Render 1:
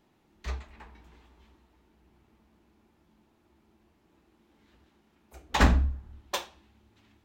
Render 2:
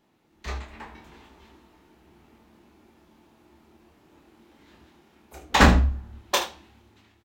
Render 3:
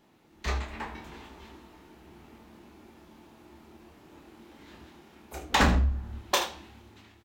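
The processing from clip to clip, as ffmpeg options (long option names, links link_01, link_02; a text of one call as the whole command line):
ffmpeg -i in.wav -filter_complex "[0:a]lowshelf=frequency=68:gain=-8.5,dynaudnorm=framelen=150:gausssize=7:maxgain=8.5dB,asplit=2[link_01][link_02];[link_02]aecho=0:1:26|76:0.531|0.224[link_03];[link_01][link_03]amix=inputs=2:normalize=0" out.wav
ffmpeg -i in.wav -filter_complex "[0:a]asplit=2[link_01][link_02];[link_02]asoftclip=type=hard:threshold=-19.5dB,volume=-4dB[link_03];[link_01][link_03]amix=inputs=2:normalize=0,acompressor=threshold=-26dB:ratio=2" out.wav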